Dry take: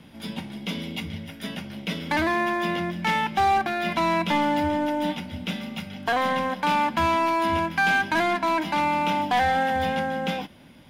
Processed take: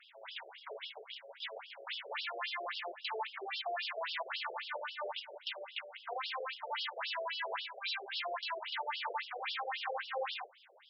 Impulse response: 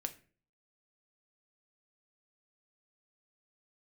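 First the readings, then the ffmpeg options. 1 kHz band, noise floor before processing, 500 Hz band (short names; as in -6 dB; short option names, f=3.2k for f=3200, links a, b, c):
-18.0 dB, -47 dBFS, -15.0 dB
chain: -af "acompressor=threshold=-27dB:ratio=1.5,aresample=22050,aresample=44100,aeval=exprs='val(0)+0.00708*sin(2*PI*7900*n/s)':c=same,aeval=exprs='0.0447*(abs(mod(val(0)/0.0447+3,4)-2)-1)':c=same,afftfilt=real='re*between(b*sr/1024,500*pow(4000/500,0.5+0.5*sin(2*PI*3.7*pts/sr))/1.41,500*pow(4000/500,0.5+0.5*sin(2*PI*3.7*pts/sr))*1.41)':imag='im*between(b*sr/1024,500*pow(4000/500,0.5+0.5*sin(2*PI*3.7*pts/sr))/1.41,500*pow(4000/500,0.5+0.5*sin(2*PI*3.7*pts/sr))*1.41)':win_size=1024:overlap=0.75"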